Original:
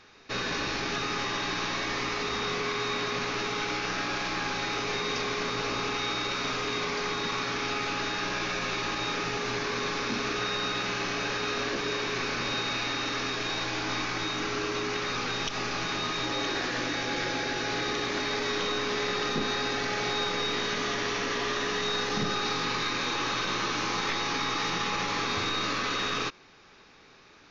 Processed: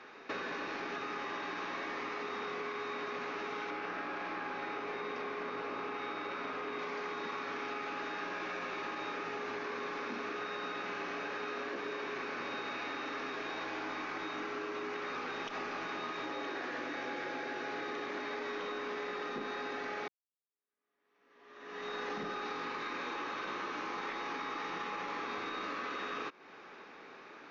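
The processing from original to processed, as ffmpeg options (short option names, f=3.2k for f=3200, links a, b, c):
-filter_complex "[0:a]asettb=1/sr,asplit=3[a][b][c];[a]atrim=end=3.704[d];[b]atrim=start=3.7:end=6.79,asetpts=PTS-STARTPTS,afade=t=in:d=0.004:c=qsin,afade=t=out:st=3.086:d=0.004:c=qsin,lowpass=f=3.1k:p=1[e];[c]atrim=start=6.786[f];[d][e]acrossfade=d=0.004:c1=hsin:c2=qsin[g];[g][f]acrossfade=d=0.004:c1=qsin:c2=hsin,asplit=2[h][i];[h]atrim=end=20.08,asetpts=PTS-STARTPTS,afade=t=out:st=20.076:d=0.004:c=hsin[j];[i]atrim=start=20.08,asetpts=PTS-STARTPTS,afade=t=in:d=2.03:c=exp[k];[j][k]concat=n=2:v=0:a=1,acrossover=split=210 2500:gain=0.0708 1 0.178[l][m][n];[l][m][n]amix=inputs=3:normalize=0,acompressor=threshold=-43dB:ratio=6,volume=5.5dB"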